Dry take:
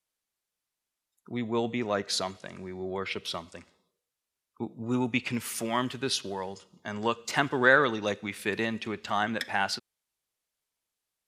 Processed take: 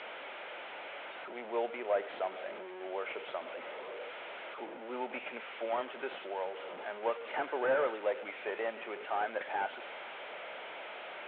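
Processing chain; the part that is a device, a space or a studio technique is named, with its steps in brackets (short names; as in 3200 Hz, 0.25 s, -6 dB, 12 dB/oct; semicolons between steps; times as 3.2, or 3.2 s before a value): digital answering machine (BPF 390–3300 Hz; delta modulation 16 kbps, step -34.5 dBFS; speaker cabinet 470–3800 Hz, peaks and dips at 570 Hz +5 dB, 1100 Hz -8 dB, 1800 Hz -6 dB, 2700 Hz -5 dB)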